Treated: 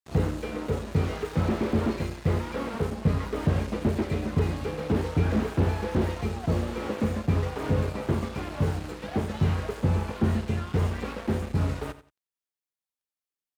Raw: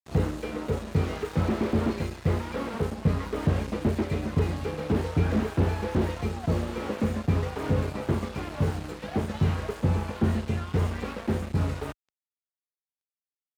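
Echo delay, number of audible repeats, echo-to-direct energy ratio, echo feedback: 89 ms, 2, -14.5 dB, 23%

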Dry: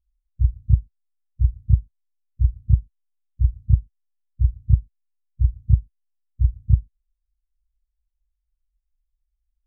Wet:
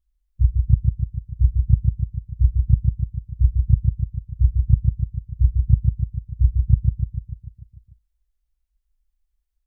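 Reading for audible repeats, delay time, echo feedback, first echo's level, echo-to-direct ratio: 7, 0.148 s, 59%, -4.0 dB, -2.0 dB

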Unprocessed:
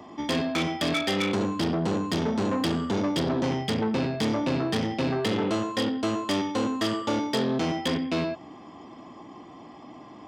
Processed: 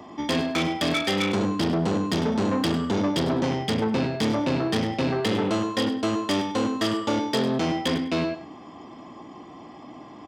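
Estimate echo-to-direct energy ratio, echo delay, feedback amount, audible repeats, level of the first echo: -14.0 dB, 0.101 s, 17%, 2, -14.0 dB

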